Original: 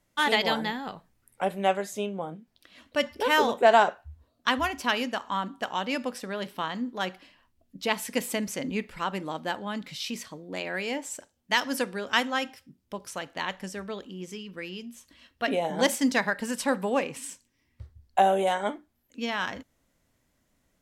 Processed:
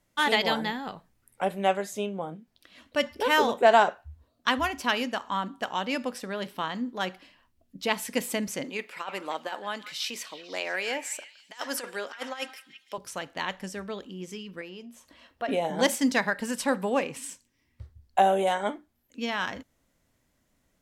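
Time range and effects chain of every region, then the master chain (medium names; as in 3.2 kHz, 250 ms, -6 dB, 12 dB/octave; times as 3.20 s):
8.64–12.98 s: high-pass 460 Hz + compressor with a negative ratio -32 dBFS, ratio -0.5 + repeats whose band climbs or falls 166 ms, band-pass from 1.7 kHz, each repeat 0.7 oct, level -10 dB
14.61–15.49 s: compression 1.5:1, threshold -57 dBFS + peaking EQ 730 Hz +11.5 dB 2 oct
whole clip: none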